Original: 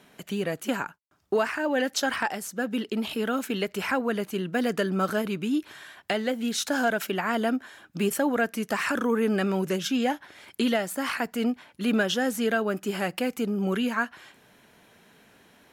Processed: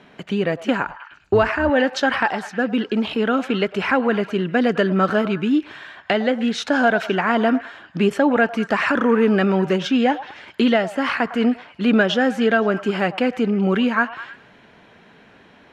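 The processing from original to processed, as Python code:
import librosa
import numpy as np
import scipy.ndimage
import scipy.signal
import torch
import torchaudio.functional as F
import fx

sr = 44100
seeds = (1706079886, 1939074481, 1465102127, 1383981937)

p1 = fx.octave_divider(x, sr, octaves=2, level_db=-4.0, at=(0.85, 1.7))
p2 = scipy.signal.sosfilt(scipy.signal.butter(2, 3300.0, 'lowpass', fs=sr, output='sos'), p1)
p3 = p2 + fx.echo_stepped(p2, sr, ms=104, hz=810.0, octaves=0.7, feedback_pct=70, wet_db=-11.5, dry=0)
y = p3 * librosa.db_to_amplitude(8.0)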